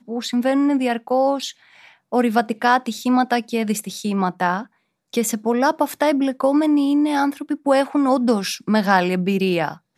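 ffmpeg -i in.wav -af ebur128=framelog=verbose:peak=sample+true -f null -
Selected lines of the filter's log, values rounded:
Integrated loudness:
  I:         -19.8 LUFS
  Threshold: -30.1 LUFS
Loudness range:
  LRA:         2.8 LU
  Threshold: -40.1 LUFS
  LRA low:   -21.5 LUFS
  LRA high:  -18.7 LUFS
Sample peak:
  Peak:       -2.2 dBFS
True peak:
  Peak:       -2.2 dBFS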